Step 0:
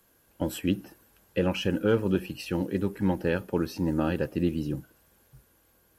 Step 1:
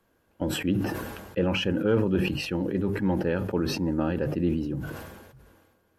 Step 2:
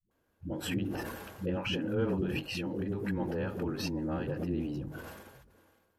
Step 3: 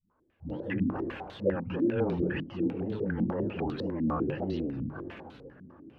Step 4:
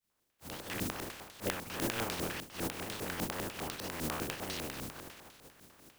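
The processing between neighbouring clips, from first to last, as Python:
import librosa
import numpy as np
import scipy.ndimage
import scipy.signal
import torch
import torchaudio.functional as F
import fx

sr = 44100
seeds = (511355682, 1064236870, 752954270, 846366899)

y1 = fx.lowpass(x, sr, hz=1900.0, slope=6)
y1 = fx.hum_notches(y1, sr, base_hz=50, count=3)
y1 = fx.sustainer(y1, sr, db_per_s=40.0)
y2 = fx.transient(y1, sr, attack_db=-3, sustain_db=6)
y2 = fx.dispersion(y2, sr, late='highs', ms=112.0, hz=300.0)
y2 = F.gain(torch.from_numpy(y2), -7.5).numpy()
y3 = fx.wow_flutter(y2, sr, seeds[0], rate_hz=2.1, depth_cents=140.0)
y3 = fx.echo_swing(y3, sr, ms=1147, ratio=1.5, feedback_pct=40, wet_db=-20.0)
y3 = fx.filter_held_lowpass(y3, sr, hz=10.0, low_hz=230.0, high_hz=3800.0)
y4 = fx.spec_flatten(y3, sr, power=0.25)
y4 = F.gain(torch.from_numpy(y4), -7.5).numpy()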